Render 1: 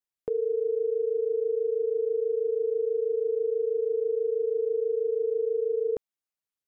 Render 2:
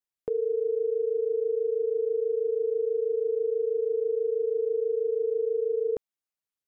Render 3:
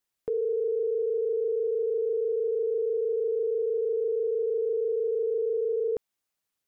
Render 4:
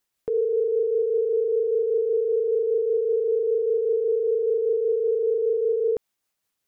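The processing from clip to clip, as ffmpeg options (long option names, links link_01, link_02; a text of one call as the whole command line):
ffmpeg -i in.wav -af anull out.wav
ffmpeg -i in.wav -af "alimiter=level_in=7dB:limit=-24dB:level=0:latency=1:release=17,volume=-7dB,volume=8dB" out.wav
ffmpeg -i in.wav -af "tremolo=f=5.1:d=0.3,volume=6dB" out.wav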